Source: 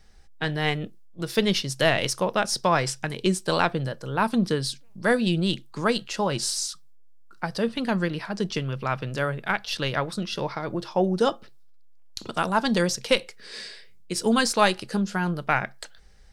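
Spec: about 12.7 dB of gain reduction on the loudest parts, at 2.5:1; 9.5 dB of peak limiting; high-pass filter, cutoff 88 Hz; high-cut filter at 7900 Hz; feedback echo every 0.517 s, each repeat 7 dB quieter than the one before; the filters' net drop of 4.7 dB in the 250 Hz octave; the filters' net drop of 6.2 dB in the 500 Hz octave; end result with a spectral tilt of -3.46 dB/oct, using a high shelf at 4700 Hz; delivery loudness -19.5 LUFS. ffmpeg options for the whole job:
-af "highpass=88,lowpass=7.9k,equalizer=f=250:t=o:g=-5,equalizer=f=500:t=o:g=-6.5,highshelf=f=4.7k:g=4,acompressor=threshold=-37dB:ratio=2.5,alimiter=level_in=0.5dB:limit=-24dB:level=0:latency=1,volume=-0.5dB,aecho=1:1:517|1034|1551|2068|2585:0.447|0.201|0.0905|0.0407|0.0183,volume=17.5dB"

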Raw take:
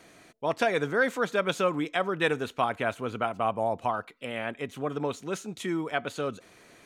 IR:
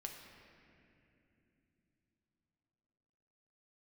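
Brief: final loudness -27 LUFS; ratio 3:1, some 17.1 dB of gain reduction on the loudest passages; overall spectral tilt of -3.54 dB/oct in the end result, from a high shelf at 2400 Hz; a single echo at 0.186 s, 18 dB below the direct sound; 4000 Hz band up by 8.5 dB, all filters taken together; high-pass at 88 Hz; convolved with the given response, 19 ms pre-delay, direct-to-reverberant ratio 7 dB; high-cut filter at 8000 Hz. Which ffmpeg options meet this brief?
-filter_complex "[0:a]highpass=88,lowpass=8k,highshelf=f=2.4k:g=7,equalizer=f=4k:t=o:g=5,acompressor=threshold=-43dB:ratio=3,aecho=1:1:186:0.126,asplit=2[a][b];[1:a]atrim=start_sample=2205,adelay=19[c];[b][c]afir=irnorm=-1:irlink=0,volume=-4dB[d];[a][d]amix=inputs=2:normalize=0,volume=14.5dB"

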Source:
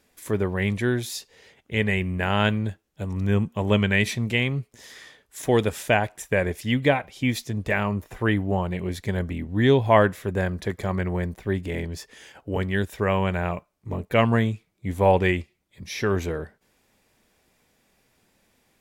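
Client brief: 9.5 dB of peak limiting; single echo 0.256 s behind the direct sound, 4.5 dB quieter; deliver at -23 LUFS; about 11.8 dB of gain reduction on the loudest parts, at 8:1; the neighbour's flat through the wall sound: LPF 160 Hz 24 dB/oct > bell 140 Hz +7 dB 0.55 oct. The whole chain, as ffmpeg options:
-af "acompressor=threshold=-25dB:ratio=8,alimiter=limit=-23dB:level=0:latency=1,lowpass=f=160:w=0.5412,lowpass=f=160:w=1.3066,equalizer=f=140:t=o:w=0.55:g=7,aecho=1:1:256:0.596,volume=12dB"

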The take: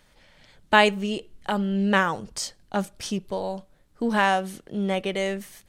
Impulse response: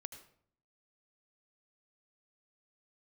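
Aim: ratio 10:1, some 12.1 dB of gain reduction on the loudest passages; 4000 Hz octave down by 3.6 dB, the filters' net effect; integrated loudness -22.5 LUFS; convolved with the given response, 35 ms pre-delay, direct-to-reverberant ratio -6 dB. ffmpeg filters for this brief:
-filter_complex "[0:a]equalizer=f=4k:t=o:g=-5.5,acompressor=threshold=-24dB:ratio=10,asplit=2[a][b];[1:a]atrim=start_sample=2205,adelay=35[c];[b][c]afir=irnorm=-1:irlink=0,volume=10dB[d];[a][d]amix=inputs=2:normalize=0,volume=1.5dB"

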